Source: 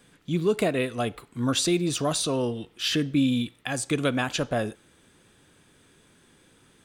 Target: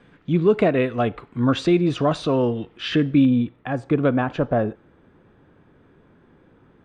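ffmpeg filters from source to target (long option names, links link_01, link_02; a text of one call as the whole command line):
ffmpeg -i in.wav -af "asetnsamples=nb_out_samples=441:pad=0,asendcmd='3.25 lowpass f 1200',lowpass=2100,volume=6.5dB" out.wav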